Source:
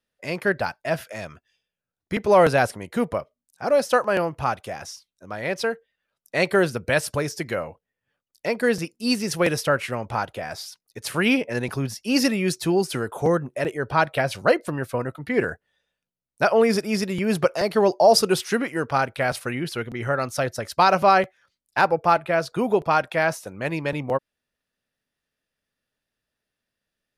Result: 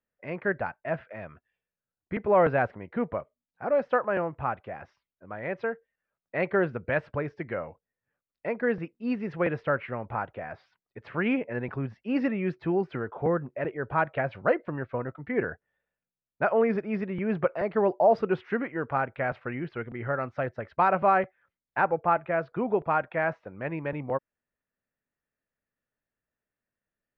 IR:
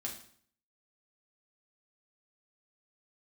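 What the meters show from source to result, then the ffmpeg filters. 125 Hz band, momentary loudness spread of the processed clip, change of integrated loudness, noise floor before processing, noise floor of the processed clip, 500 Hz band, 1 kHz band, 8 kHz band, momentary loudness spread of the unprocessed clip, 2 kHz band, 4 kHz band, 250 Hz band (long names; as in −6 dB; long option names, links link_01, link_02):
−5.5 dB, 13 LU, −6.0 dB, below −85 dBFS, below −85 dBFS, −5.5 dB, −5.5 dB, below −40 dB, 13 LU, −6.5 dB, below −20 dB, −5.5 dB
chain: -af "lowpass=frequency=2200:width=0.5412,lowpass=frequency=2200:width=1.3066,volume=-5.5dB"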